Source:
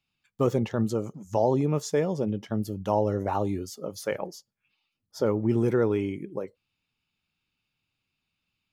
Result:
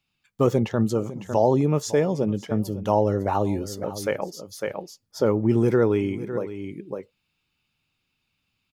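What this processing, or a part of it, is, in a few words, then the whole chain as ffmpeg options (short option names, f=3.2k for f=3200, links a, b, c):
ducked delay: -filter_complex "[0:a]asplit=3[a][b][c];[b]adelay=554,volume=-3.5dB[d];[c]apad=whole_len=409108[e];[d][e]sidechaincompress=threshold=-42dB:ratio=8:attack=30:release=305[f];[a][f]amix=inputs=2:normalize=0,volume=4dB"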